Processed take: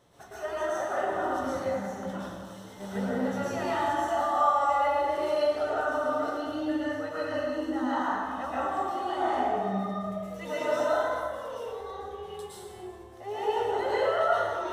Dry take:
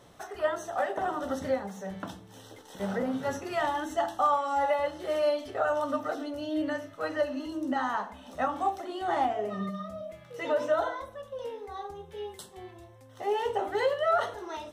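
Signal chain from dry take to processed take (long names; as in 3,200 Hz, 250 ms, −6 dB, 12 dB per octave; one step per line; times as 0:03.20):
0:10.03–0:11.67: high-shelf EQ 4,600 Hz +8.5 dB
convolution reverb RT60 1.8 s, pre-delay 103 ms, DRR −9 dB
level −8 dB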